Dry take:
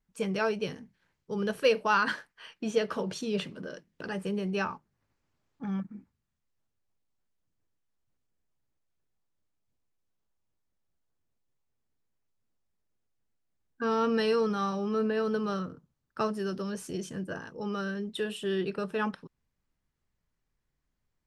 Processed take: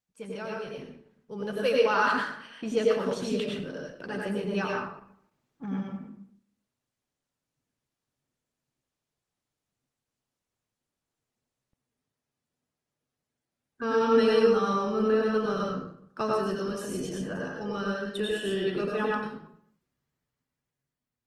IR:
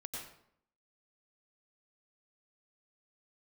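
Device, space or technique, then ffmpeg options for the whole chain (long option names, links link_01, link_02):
far-field microphone of a smart speaker: -filter_complex "[1:a]atrim=start_sample=2205[link_01];[0:a][link_01]afir=irnorm=-1:irlink=0,highpass=98,dynaudnorm=framelen=420:gausssize=7:maxgain=9dB,volume=-4dB" -ar 48000 -c:a libopus -b:a 20k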